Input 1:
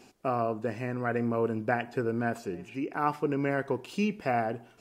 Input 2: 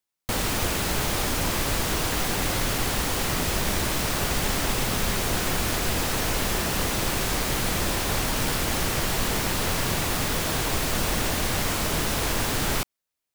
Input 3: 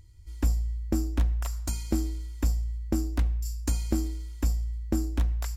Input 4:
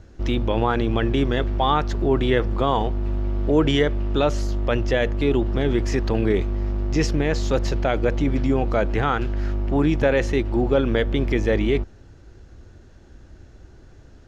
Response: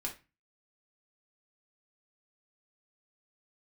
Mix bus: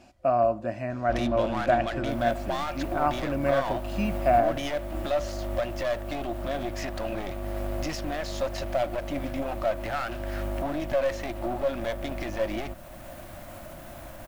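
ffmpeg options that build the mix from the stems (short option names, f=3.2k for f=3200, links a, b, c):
-filter_complex "[0:a]highshelf=f=6.6k:g=-8.5,volume=0dB[a];[1:a]equalizer=f=5k:w=0.7:g=-11.5,alimiter=limit=-22.5dB:level=0:latency=1:release=199,adelay=1800,volume=-12dB[b];[2:a]acrossover=split=380 2800:gain=0.251 1 0.0794[c][d][e];[c][d][e]amix=inputs=3:normalize=0,aeval=exprs='val(0)*pow(10,-21*(0.5-0.5*cos(2*PI*0.59*n/s))/20)':c=same,volume=0dB[f];[3:a]acontrast=87,asplit=2[g][h];[h]highpass=f=720:p=1,volume=12dB,asoftclip=type=tanh:threshold=-3dB[i];[g][i]amix=inputs=2:normalize=0,lowpass=f=4.4k:p=1,volume=-6dB,aeval=exprs='clip(val(0),-1,0.112)':c=same,adelay=900,volume=-10dB[j];[b][f][j]amix=inputs=3:normalize=0,alimiter=limit=-21.5dB:level=0:latency=1:release=414,volume=0dB[k];[a][k]amix=inputs=2:normalize=0,superequalizer=7b=0.251:8b=2.82"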